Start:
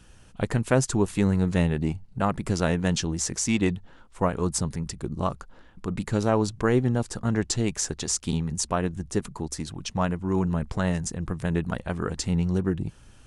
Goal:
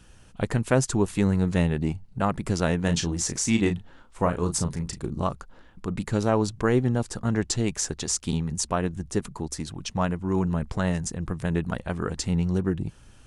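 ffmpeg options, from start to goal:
-filter_complex "[0:a]asettb=1/sr,asplit=3[s0][s1][s2];[s0]atrim=end=2.844[s3];[s1]atrim=start=2.84:end=5.24,asetpts=PTS-STARTPTS,afade=t=in:d=0.004:c=qsin,afade=t=out:st=2.396:d=0.004:c=qsin,asplit=2[s4][s5];[s5]adelay=35,volume=0.398[s6];[s4][s6]amix=inputs=2:normalize=0,atrim=end_sample=105840[s7];[s2]atrim=start=5.236[s8];[s3][s7]acrossfade=d=0.004:c1=hsin:c2=qsin[s9];[s9][s8]acrossfade=d=0.004:c1=qsin:c2=hsin"

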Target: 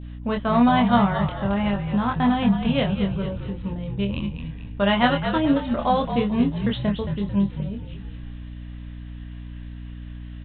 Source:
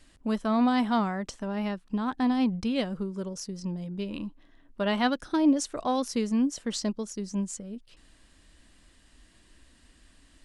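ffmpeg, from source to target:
-filter_complex "[0:a]adynamicequalizer=threshold=0.00708:dfrequency=1600:dqfactor=0.78:tfrequency=1600:tqfactor=0.78:attack=5:release=100:ratio=0.375:range=1.5:mode=cutabove:tftype=bell,asplit=6[s0][s1][s2][s3][s4][s5];[s1]adelay=222,afreqshift=-49,volume=0.376[s6];[s2]adelay=444,afreqshift=-98,volume=0.176[s7];[s3]adelay=666,afreqshift=-147,volume=0.0832[s8];[s4]adelay=888,afreqshift=-196,volume=0.0389[s9];[s5]adelay=1110,afreqshift=-245,volume=0.0184[s10];[s0][s6][s7][s8][s9][s10]amix=inputs=6:normalize=0,aresample=8000,aresample=44100,equalizer=f=320:w=1.9:g=-9.5,asplit=2[s11][s12];[s12]adelay=25,volume=0.631[s13];[s11][s13]amix=inputs=2:normalize=0,aeval=exprs='val(0)+0.00794*(sin(2*PI*60*n/s)+sin(2*PI*2*60*n/s)/2+sin(2*PI*3*60*n/s)/3+sin(2*PI*4*60*n/s)/4+sin(2*PI*5*60*n/s)/5)':c=same,volume=2.37"

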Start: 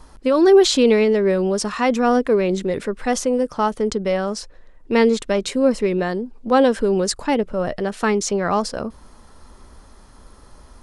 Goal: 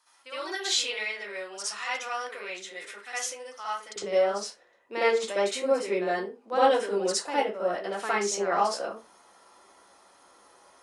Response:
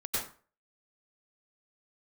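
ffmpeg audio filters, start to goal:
-filter_complex "[0:a]asetnsamples=n=441:p=0,asendcmd='3.96 highpass f 510',highpass=1500[s0];[1:a]atrim=start_sample=2205,asetrate=70560,aresample=44100[s1];[s0][s1]afir=irnorm=-1:irlink=0,volume=0.562"

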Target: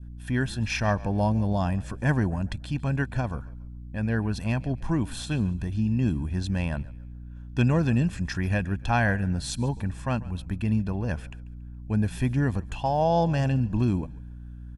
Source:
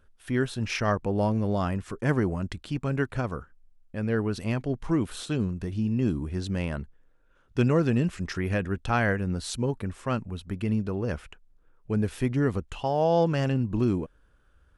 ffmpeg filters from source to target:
-filter_complex "[0:a]aeval=exprs='val(0)+0.00794*(sin(2*PI*60*n/s)+sin(2*PI*2*60*n/s)/2+sin(2*PI*3*60*n/s)/3+sin(2*PI*4*60*n/s)/4+sin(2*PI*5*60*n/s)/5)':c=same,adynamicequalizer=threshold=0.01:dfrequency=1600:dqfactor=0.94:tfrequency=1600:tqfactor=0.94:attack=5:release=100:ratio=0.375:range=2:mode=cutabove:tftype=bell,aecho=1:1:1.2:0.56,asplit=2[s0][s1];[s1]asplit=3[s2][s3][s4];[s2]adelay=140,afreqshift=-41,volume=0.0944[s5];[s3]adelay=280,afreqshift=-82,volume=0.032[s6];[s4]adelay=420,afreqshift=-123,volume=0.011[s7];[s5][s6][s7]amix=inputs=3:normalize=0[s8];[s0][s8]amix=inputs=2:normalize=0"

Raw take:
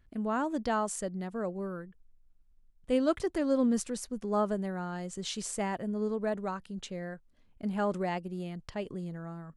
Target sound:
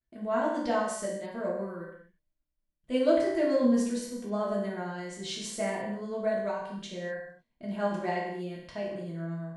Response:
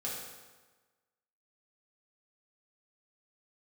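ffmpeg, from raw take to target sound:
-filter_complex "[0:a]equalizer=f=500:t=o:w=1:g=5,equalizer=f=2000:t=o:w=1:g=4,equalizer=f=4000:t=o:w=1:g=5,tremolo=f=8.8:d=0.33,agate=range=0.0224:threshold=0.002:ratio=3:detection=peak[s0];[1:a]atrim=start_sample=2205,afade=t=out:st=0.39:d=0.01,atrim=end_sample=17640,asetrate=57330,aresample=44100[s1];[s0][s1]afir=irnorm=-1:irlink=0"

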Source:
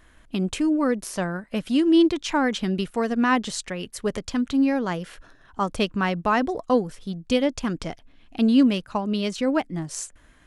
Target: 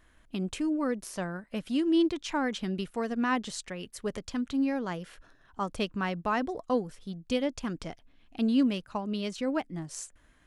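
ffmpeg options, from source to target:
-af "volume=0.422"

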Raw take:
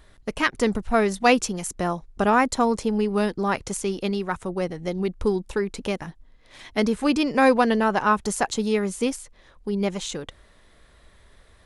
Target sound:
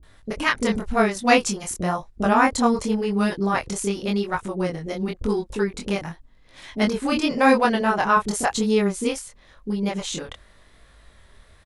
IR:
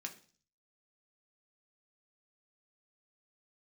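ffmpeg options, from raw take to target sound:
-filter_complex "[0:a]flanger=delay=18.5:depth=7:speed=0.92,acrossover=split=410[s0][s1];[s1]adelay=30[s2];[s0][s2]amix=inputs=2:normalize=0,volume=1.78"

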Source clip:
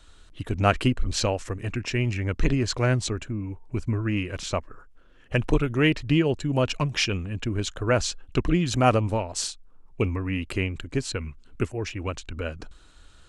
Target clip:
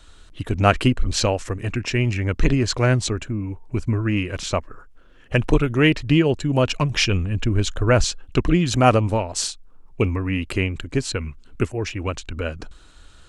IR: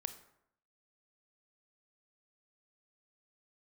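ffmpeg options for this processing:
-filter_complex "[0:a]asettb=1/sr,asplit=3[s0][s1][s2];[s0]atrim=end=6.904[s3];[s1]atrim=start=6.9:end=8.04,asetpts=PTS-STARTPTS,afade=t=in:d=0.004:c=qsin,afade=t=out:st=1.136:d=0.004:c=qsin,lowshelf=f=78:g=10.5[s4];[s2]atrim=start=8.036[s5];[s3][s4]acrossfade=d=0.004:c1=hsin:c2=qsin[s6];[s6][s5]acrossfade=d=0.004:c1=qsin:c2=hsin,volume=1.68"

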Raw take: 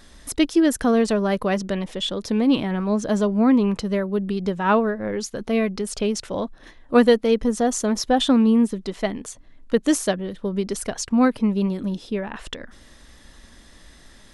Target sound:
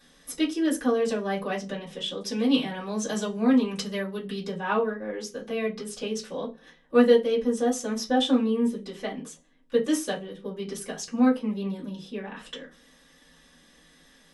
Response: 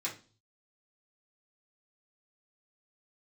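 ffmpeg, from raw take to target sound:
-filter_complex "[0:a]asettb=1/sr,asplit=3[s0][s1][s2];[s0]atrim=end=2.264[s3];[s1]atrim=start=2.26:end=4.47,asetpts=PTS-STARTPTS,afade=t=in:d=0.004:c=qsin,afade=t=out:st=2.206:d=0.004:c=qsin,equalizer=f=8100:t=o:w=2.9:g=10[s4];[s2]atrim=start=4.466[s5];[s3][s4]acrossfade=d=0.004:c1=hsin:c2=qsin[s6];[s6][s5]acrossfade=d=0.004:c1=qsin:c2=hsin[s7];[1:a]atrim=start_sample=2205,asetrate=66150,aresample=44100[s8];[s7][s8]afir=irnorm=-1:irlink=0,volume=0.596"

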